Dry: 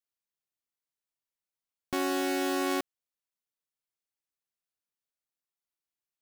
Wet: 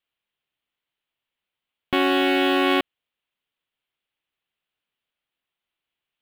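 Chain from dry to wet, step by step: resonant high shelf 4300 Hz -11.5 dB, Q 3; gain +9 dB

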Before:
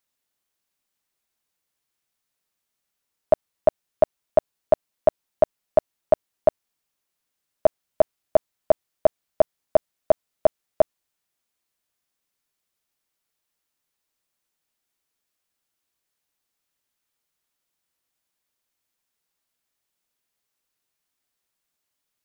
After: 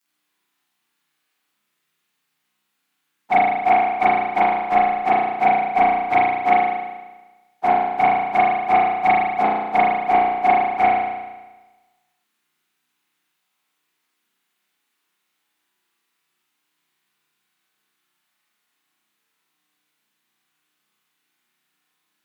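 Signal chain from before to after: pitch shift by moving bins +3 st; HPF 180 Hz 24 dB/oct; sine folder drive 5 dB, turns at -8 dBFS; bell 550 Hz -13 dB 0.71 oct; spring tank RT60 1.2 s, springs 33 ms, chirp 20 ms, DRR -8.5 dB

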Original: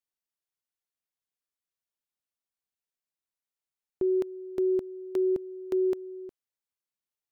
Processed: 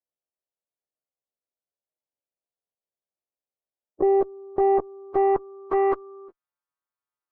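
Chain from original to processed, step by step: frequency quantiser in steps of 2 st; added harmonics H 4 -11 dB, 5 -25 dB, 6 -16 dB, 7 -11 dB, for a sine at -20 dBFS; low-pass sweep 600 Hz -> 1200 Hz, 3.95–6.12; gain +2.5 dB

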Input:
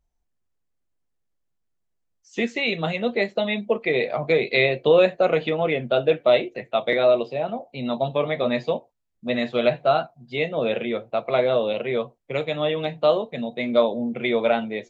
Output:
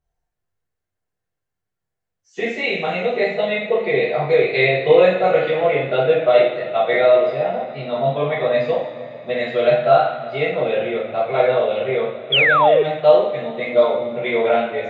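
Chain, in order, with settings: fifteen-band EQ 100 Hz +12 dB, 630 Hz +7 dB, 1600 Hz +8 dB; two-slope reverb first 0.59 s, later 3.7 s, from -17 dB, DRR -10 dB; painted sound fall, 12.32–12.83, 400–3500 Hz -4 dBFS; gain -10.5 dB

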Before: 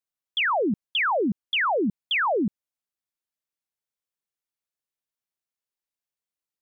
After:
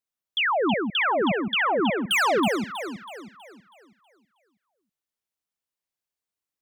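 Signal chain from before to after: 2–2.4 sample leveller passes 3; echo with dull and thin repeats by turns 0.161 s, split 1300 Hz, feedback 65%, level -4 dB; record warp 78 rpm, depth 100 cents

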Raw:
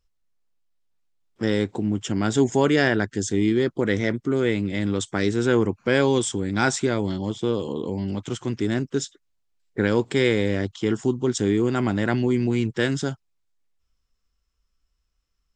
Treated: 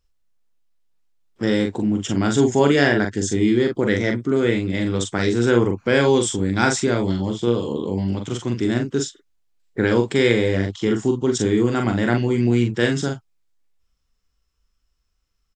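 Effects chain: early reflections 42 ms -5 dB, 52 ms -18 dB; gain +2 dB

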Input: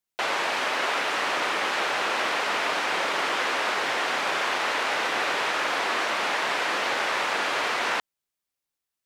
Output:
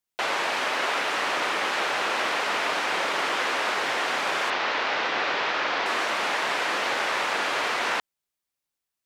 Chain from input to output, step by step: 4.5–5.86 LPF 5500 Hz 24 dB/oct

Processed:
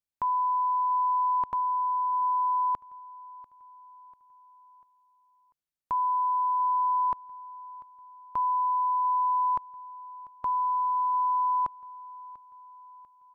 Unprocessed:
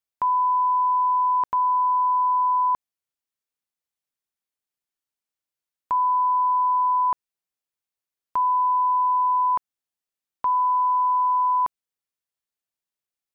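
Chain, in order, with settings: low shelf 230 Hz +9 dB; on a send: feedback echo 0.693 s, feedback 48%, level -20.5 dB; on the sum: gain -6 dB

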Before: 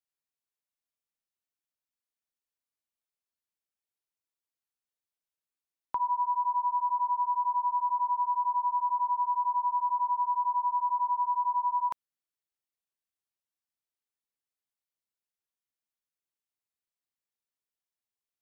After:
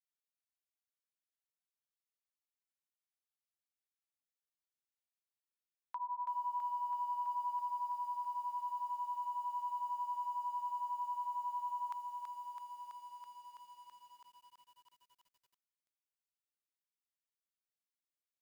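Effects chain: HPF 1100 Hz 12 dB/oct; lo-fi delay 0.329 s, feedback 80%, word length 10-bit, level -5.5 dB; gain -7.5 dB

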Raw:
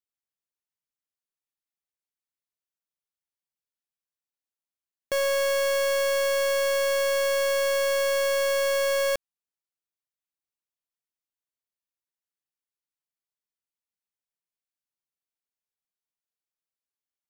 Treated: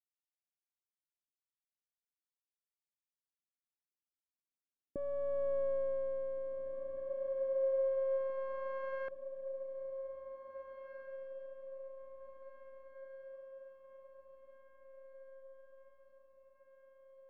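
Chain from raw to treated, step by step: Doppler pass-by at 5.56, 11 m/s, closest 4.7 m; dynamic EQ 1200 Hz, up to +8 dB, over -53 dBFS, Q 4.9; low-pass sweep 290 Hz -> 2100 Hz, 6.91–9.57; air absorption 77 m; diffused feedback echo 1.922 s, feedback 57%, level -10 dB

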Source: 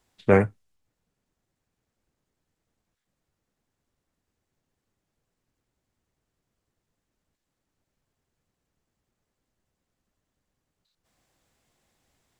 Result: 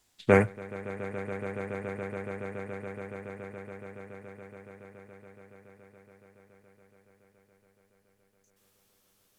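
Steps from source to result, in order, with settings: speed glide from 98% -> 166%; high shelf 2600 Hz +10 dB; swelling echo 0.141 s, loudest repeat 8, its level -17 dB; gain -3 dB

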